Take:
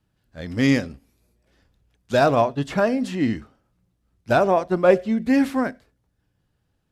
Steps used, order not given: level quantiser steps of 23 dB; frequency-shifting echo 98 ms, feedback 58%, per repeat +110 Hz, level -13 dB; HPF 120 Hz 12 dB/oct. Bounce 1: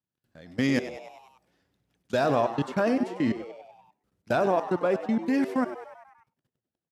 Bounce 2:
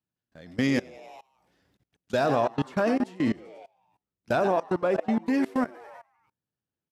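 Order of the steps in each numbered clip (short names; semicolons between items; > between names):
level quantiser > frequency-shifting echo > HPF; frequency-shifting echo > HPF > level quantiser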